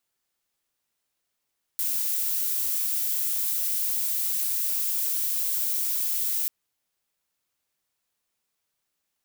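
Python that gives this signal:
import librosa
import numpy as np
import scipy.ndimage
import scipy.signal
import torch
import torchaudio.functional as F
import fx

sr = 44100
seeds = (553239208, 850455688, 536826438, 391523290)

y = fx.noise_colour(sr, seeds[0], length_s=4.69, colour='violet', level_db=-26.5)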